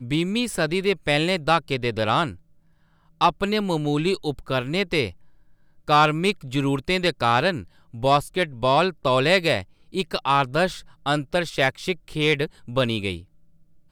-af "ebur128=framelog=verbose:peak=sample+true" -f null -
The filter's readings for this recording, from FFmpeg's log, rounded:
Integrated loudness:
  I:         -22.7 LUFS
  Threshold: -33.3 LUFS
Loudness range:
  LRA:         3.3 LU
  Threshold: -43.1 LUFS
  LRA low:   -25.0 LUFS
  LRA high:  -21.7 LUFS
Sample peak:
  Peak:       -7.3 dBFS
True peak:
  Peak:       -7.3 dBFS